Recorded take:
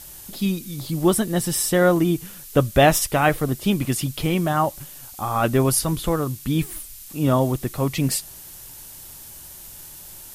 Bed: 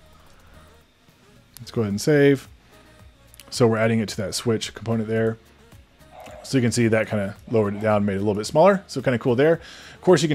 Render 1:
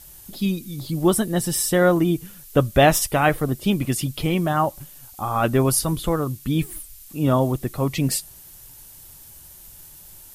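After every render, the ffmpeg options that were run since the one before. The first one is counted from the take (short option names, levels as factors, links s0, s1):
-af "afftdn=nr=6:nf=-41"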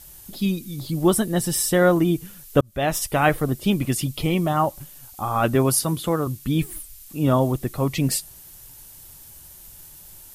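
-filter_complex "[0:a]asettb=1/sr,asplit=3[s0][s1][s2];[s0]atrim=end=4.064[s3];[s1]atrim=start=4.06:end=4.61,asetpts=PTS-STARTPTS,afade=t=in:d=0.004:c=qsin,afade=t=out:st=0.546:d=0.004:c=qsin,bandreject=f=1600:w=5.1[s4];[s2]atrim=start=4.606[s5];[s3][s4]acrossfade=d=0.004:c1=hsin:c2=qsin[s6];[s6][s5]acrossfade=d=0.004:c1=qsin:c2=hsin,asettb=1/sr,asplit=3[s7][s8][s9];[s7]atrim=end=5.554[s10];[s8]atrim=start=5.55:end=6.27,asetpts=PTS-STARTPTS,afade=t=in:d=0.004:c=qsin,afade=t=out:st=0.716:d=0.004:c=qsin,highpass=100[s11];[s9]atrim=start=6.266[s12];[s10][s11]acrossfade=d=0.004:c1=hsin:c2=qsin[s13];[s13][s12]acrossfade=d=0.004:c1=qsin:c2=hsin,asplit=2[s14][s15];[s14]atrim=end=2.61,asetpts=PTS-STARTPTS,afade=t=out:st=2.606:d=0.004:c=hsin[s16];[s15]atrim=start=2.61,asetpts=PTS-STARTPTS,afade=t=in:d=0.62[s17];[s16][s17]concat=n=2:v=0:a=1"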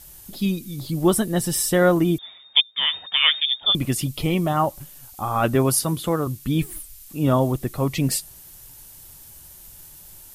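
-filter_complex "[0:a]asettb=1/sr,asplit=3[s0][s1][s2];[s0]atrim=end=2.184[s3];[s1]atrim=start=2.18:end=3.75,asetpts=PTS-STARTPTS,afade=t=in:d=0.004:c=qsin,afade=t=out:st=1.566:d=0.004:c=qsin,lowpass=f=3100:t=q:w=0.5098,lowpass=f=3100:t=q:w=0.6013,lowpass=f=3100:t=q:w=0.9,lowpass=f=3100:t=q:w=2.563,afreqshift=-3700[s4];[s2]atrim=start=3.746[s5];[s3][s4]acrossfade=d=0.004:c1=hsin:c2=qsin[s6];[s6][s5]acrossfade=d=0.004:c1=qsin:c2=hsin"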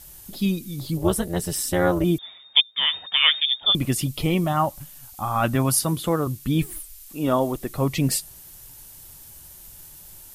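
-filter_complex "[0:a]asettb=1/sr,asplit=3[s0][s1][s2];[s0]atrim=end=0.974[s3];[s1]atrim=start=0.97:end=2.04,asetpts=PTS-STARTPTS,afade=t=in:d=0.004:c=qsin,afade=t=out:st=1.066:d=0.004:c=qsin,tremolo=f=260:d=0.824[s4];[s2]atrim=start=2.036[s5];[s3][s4]acrossfade=d=0.004:c1=hsin:c2=qsin[s6];[s6][s5]acrossfade=d=0.004:c1=qsin:c2=hsin,asettb=1/sr,asplit=3[s7][s8][s9];[s7]atrim=end=4.444[s10];[s8]atrim=start=4.44:end=5.84,asetpts=PTS-STARTPTS,afade=t=in:d=0.004:c=qsin,afade=t=out:st=1.396:d=0.004:c=qsin,equalizer=f=420:t=o:w=0.56:g=-10[s11];[s9]atrim=start=5.836[s12];[s10][s11]acrossfade=d=0.004:c1=hsin:c2=qsin[s13];[s13][s12]acrossfade=d=0.004:c1=qsin:c2=hsin,asettb=1/sr,asplit=3[s14][s15][s16];[s14]atrim=end=6.744[s17];[s15]atrim=start=6.74:end=7.69,asetpts=PTS-STARTPTS,afade=t=in:d=0.004:c=qsin,afade=t=out:st=0.946:d=0.004:c=qsin,equalizer=f=110:t=o:w=1.4:g=-11.5[s18];[s16]atrim=start=7.686[s19];[s17][s18]acrossfade=d=0.004:c1=hsin:c2=qsin[s20];[s20][s19]acrossfade=d=0.004:c1=qsin:c2=hsin"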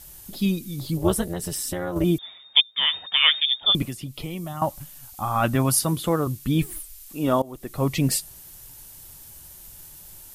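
-filter_complex "[0:a]asettb=1/sr,asplit=3[s0][s1][s2];[s0]atrim=end=1.324[s3];[s1]atrim=start=1.32:end=1.96,asetpts=PTS-STARTPTS,afade=t=in:d=0.004:c=qsin,afade=t=out:st=0.636:d=0.004:c=qsin,acompressor=threshold=0.0631:ratio=5:attack=3.2:release=140:knee=1:detection=peak[s4];[s2]atrim=start=1.956[s5];[s3][s4]acrossfade=d=0.004:c1=hsin:c2=qsin[s6];[s6][s5]acrossfade=d=0.004:c1=qsin:c2=hsin,asettb=1/sr,asplit=3[s7][s8][s9];[s7]atrim=end=3.824[s10];[s8]atrim=start=3.82:end=4.62,asetpts=PTS-STARTPTS,afade=t=in:d=0.004:c=qsin,afade=t=out:st=0.796:d=0.004:c=qsin,acrossover=split=180|4400[s11][s12][s13];[s11]acompressor=threshold=0.0141:ratio=4[s14];[s12]acompressor=threshold=0.0158:ratio=4[s15];[s13]acompressor=threshold=0.00631:ratio=4[s16];[s14][s15][s16]amix=inputs=3:normalize=0[s17];[s9]atrim=start=4.616[s18];[s10][s17]acrossfade=d=0.004:c1=hsin:c2=qsin[s19];[s19][s18]acrossfade=d=0.004:c1=qsin:c2=hsin,asplit=2[s20][s21];[s20]atrim=end=7.42,asetpts=PTS-STARTPTS,afade=t=out:st=7.416:d=0.004:c=hsin:silence=0.0794328[s22];[s21]atrim=start=7.42,asetpts=PTS-STARTPTS,afade=t=in:d=0.45:silence=0.0794328[s23];[s22][s23]concat=n=2:v=0:a=1"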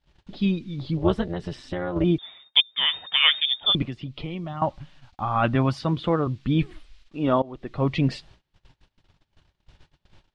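-af "lowpass=f=3800:w=0.5412,lowpass=f=3800:w=1.3066,agate=range=0.0562:threshold=0.00355:ratio=16:detection=peak"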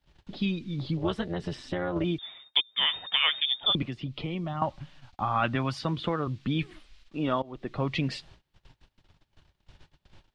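-filter_complex "[0:a]acrossover=split=92|1300[s0][s1][s2];[s0]acompressor=threshold=0.00398:ratio=4[s3];[s1]acompressor=threshold=0.0447:ratio=4[s4];[s2]acompressor=threshold=0.0708:ratio=4[s5];[s3][s4][s5]amix=inputs=3:normalize=0"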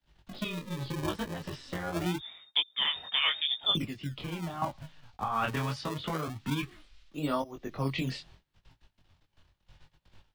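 -filter_complex "[0:a]flanger=delay=18.5:depth=5.2:speed=0.8,acrossover=split=120|460|3900[s0][s1][s2][s3];[s1]acrusher=samples=36:mix=1:aa=0.000001:lfo=1:lforange=57.6:lforate=0.23[s4];[s0][s4][s2][s3]amix=inputs=4:normalize=0"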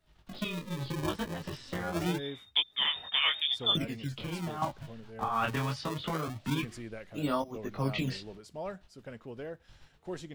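-filter_complex "[1:a]volume=0.0631[s0];[0:a][s0]amix=inputs=2:normalize=0"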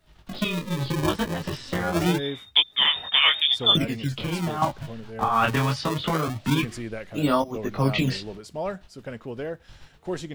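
-af "volume=2.82"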